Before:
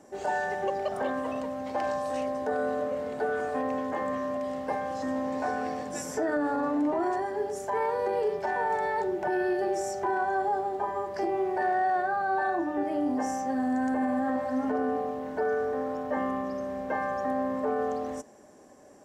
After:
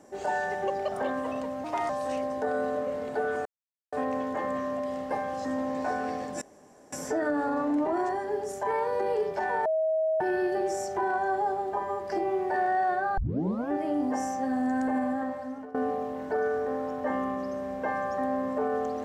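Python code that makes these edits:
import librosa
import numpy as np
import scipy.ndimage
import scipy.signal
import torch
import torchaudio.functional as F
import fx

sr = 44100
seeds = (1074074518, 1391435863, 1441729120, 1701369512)

y = fx.edit(x, sr, fx.speed_span(start_s=1.64, length_s=0.3, speed=1.18),
    fx.insert_silence(at_s=3.5, length_s=0.47),
    fx.insert_room_tone(at_s=5.99, length_s=0.51),
    fx.bleep(start_s=8.72, length_s=0.55, hz=636.0, db=-23.0),
    fx.tape_start(start_s=12.24, length_s=0.54),
    fx.fade_out_to(start_s=14.04, length_s=0.77, floor_db=-19.0), tone=tone)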